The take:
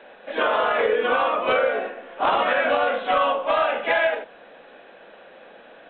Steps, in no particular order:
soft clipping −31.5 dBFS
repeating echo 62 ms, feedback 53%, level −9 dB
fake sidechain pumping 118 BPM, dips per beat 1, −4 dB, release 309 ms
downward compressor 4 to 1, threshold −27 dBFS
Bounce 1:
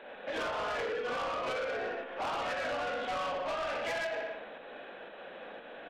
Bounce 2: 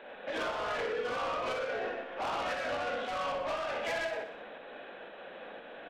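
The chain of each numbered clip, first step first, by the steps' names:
repeating echo, then fake sidechain pumping, then downward compressor, then soft clipping
downward compressor, then soft clipping, then fake sidechain pumping, then repeating echo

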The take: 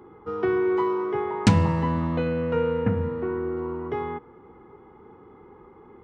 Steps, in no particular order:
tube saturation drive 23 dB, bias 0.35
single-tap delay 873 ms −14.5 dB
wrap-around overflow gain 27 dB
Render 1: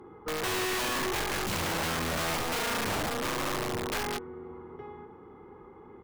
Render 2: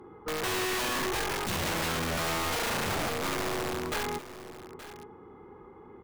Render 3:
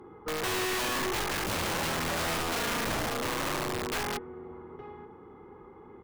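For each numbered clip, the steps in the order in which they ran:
single-tap delay, then tube saturation, then wrap-around overflow
tube saturation, then wrap-around overflow, then single-tap delay
tube saturation, then single-tap delay, then wrap-around overflow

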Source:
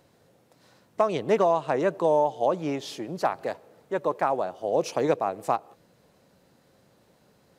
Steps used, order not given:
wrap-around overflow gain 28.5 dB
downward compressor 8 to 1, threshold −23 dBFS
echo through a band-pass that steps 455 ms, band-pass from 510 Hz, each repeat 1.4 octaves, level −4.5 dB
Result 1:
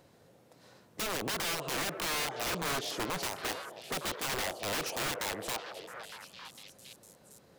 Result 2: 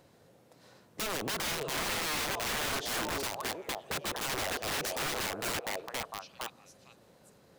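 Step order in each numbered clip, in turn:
downward compressor, then wrap-around overflow, then echo through a band-pass that steps
echo through a band-pass that steps, then downward compressor, then wrap-around overflow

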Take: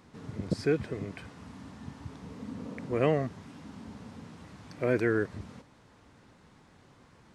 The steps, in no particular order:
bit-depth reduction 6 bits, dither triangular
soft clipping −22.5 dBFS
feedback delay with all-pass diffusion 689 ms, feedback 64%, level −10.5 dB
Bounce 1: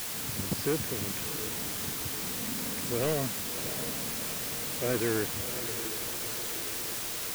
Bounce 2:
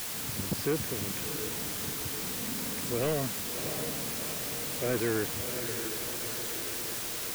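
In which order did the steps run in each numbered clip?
soft clipping, then bit-depth reduction, then feedback delay with all-pass diffusion
bit-depth reduction, then feedback delay with all-pass diffusion, then soft clipping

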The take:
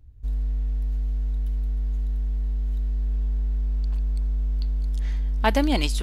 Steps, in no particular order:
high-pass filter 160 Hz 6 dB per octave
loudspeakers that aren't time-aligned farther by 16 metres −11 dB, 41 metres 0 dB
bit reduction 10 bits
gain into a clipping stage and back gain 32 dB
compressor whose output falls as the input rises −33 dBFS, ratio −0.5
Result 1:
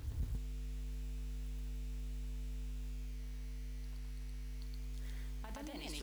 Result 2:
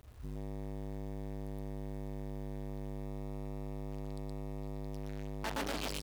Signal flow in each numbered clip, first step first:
compressor whose output falls as the input rises, then loudspeakers that aren't time-aligned, then bit reduction, then high-pass filter, then gain into a clipping stage and back
loudspeakers that aren't time-aligned, then gain into a clipping stage and back, then compressor whose output falls as the input rises, then high-pass filter, then bit reduction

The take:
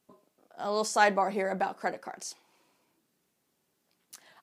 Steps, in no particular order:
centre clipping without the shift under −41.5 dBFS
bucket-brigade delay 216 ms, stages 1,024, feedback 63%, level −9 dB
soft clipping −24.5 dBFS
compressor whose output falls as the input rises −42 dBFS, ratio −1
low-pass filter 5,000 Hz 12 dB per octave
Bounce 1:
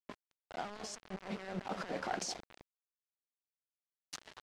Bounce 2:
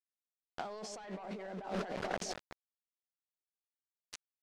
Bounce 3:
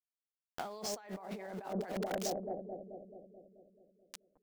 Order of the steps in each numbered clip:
compressor whose output falls as the input rises, then bucket-brigade delay, then centre clipping without the shift, then low-pass filter, then soft clipping
soft clipping, then bucket-brigade delay, then centre clipping without the shift, then compressor whose output falls as the input rises, then low-pass filter
low-pass filter, then centre clipping without the shift, then bucket-brigade delay, then compressor whose output falls as the input rises, then soft clipping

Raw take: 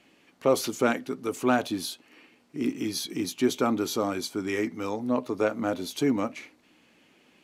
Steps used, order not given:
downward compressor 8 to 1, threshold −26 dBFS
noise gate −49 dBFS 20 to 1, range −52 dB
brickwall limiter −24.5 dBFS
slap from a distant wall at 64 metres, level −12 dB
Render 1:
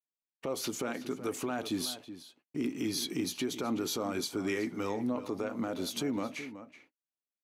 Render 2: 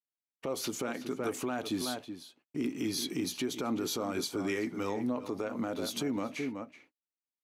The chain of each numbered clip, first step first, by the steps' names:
downward compressor, then brickwall limiter, then noise gate, then slap from a distant wall
noise gate, then slap from a distant wall, then downward compressor, then brickwall limiter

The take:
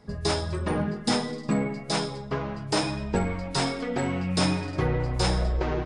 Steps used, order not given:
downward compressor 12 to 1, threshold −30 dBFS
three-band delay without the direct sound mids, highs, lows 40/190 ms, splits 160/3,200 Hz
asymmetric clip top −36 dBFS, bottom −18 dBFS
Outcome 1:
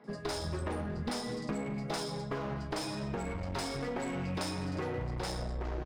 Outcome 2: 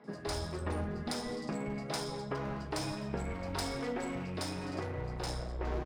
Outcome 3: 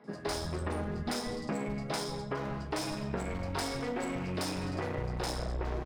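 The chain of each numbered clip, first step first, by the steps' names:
three-band delay without the direct sound, then downward compressor, then asymmetric clip
downward compressor, then asymmetric clip, then three-band delay without the direct sound
asymmetric clip, then three-band delay without the direct sound, then downward compressor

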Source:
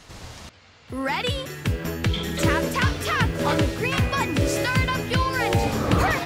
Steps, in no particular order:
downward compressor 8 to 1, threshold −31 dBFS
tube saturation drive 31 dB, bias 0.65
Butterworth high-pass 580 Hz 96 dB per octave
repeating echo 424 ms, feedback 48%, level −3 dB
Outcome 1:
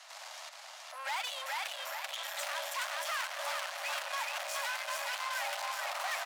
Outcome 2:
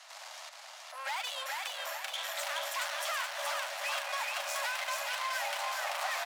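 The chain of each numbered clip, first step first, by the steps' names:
repeating echo, then tube saturation, then downward compressor, then Butterworth high-pass
tube saturation, then Butterworth high-pass, then downward compressor, then repeating echo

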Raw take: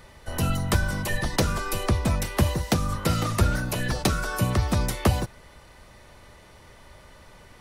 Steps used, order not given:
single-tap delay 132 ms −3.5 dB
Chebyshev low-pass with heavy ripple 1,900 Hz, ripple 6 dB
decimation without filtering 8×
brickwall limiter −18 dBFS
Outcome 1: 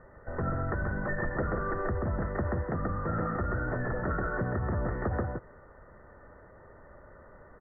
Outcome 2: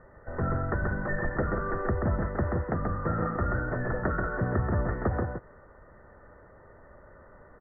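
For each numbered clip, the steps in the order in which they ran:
single-tap delay, then decimation without filtering, then brickwall limiter, then Chebyshev low-pass with heavy ripple
decimation without filtering, then Chebyshev low-pass with heavy ripple, then brickwall limiter, then single-tap delay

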